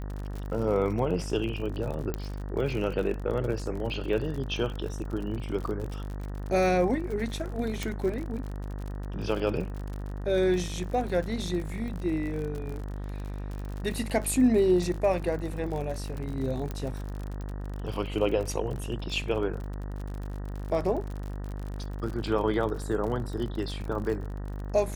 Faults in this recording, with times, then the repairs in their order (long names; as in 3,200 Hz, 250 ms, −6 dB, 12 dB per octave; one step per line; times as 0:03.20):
mains buzz 50 Hz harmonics 38 −35 dBFS
surface crackle 48 per second −34 dBFS
0:02.14: click −17 dBFS
0:07.83: click
0:16.71: click −20 dBFS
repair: click removal
hum removal 50 Hz, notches 38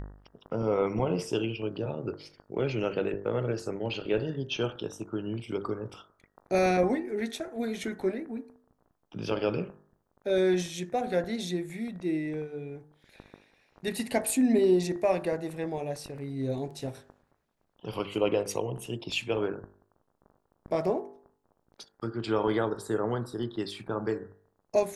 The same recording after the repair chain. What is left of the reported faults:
0:02.14: click
0:16.71: click